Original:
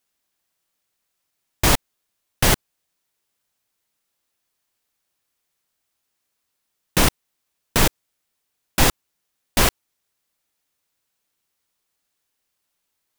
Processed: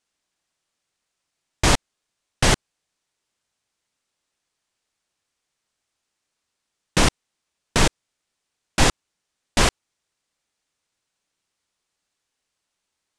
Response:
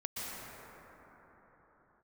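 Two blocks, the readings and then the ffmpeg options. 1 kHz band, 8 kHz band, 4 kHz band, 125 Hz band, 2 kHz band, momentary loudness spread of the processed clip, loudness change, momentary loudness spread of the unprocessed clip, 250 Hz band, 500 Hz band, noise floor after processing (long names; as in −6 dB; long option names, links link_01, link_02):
0.0 dB, −1.5 dB, 0.0 dB, 0.0 dB, 0.0 dB, 5 LU, −1.0 dB, 5 LU, 0.0 dB, 0.0 dB, −81 dBFS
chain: -af "lowpass=frequency=9000:width=0.5412,lowpass=frequency=9000:width=1.3066"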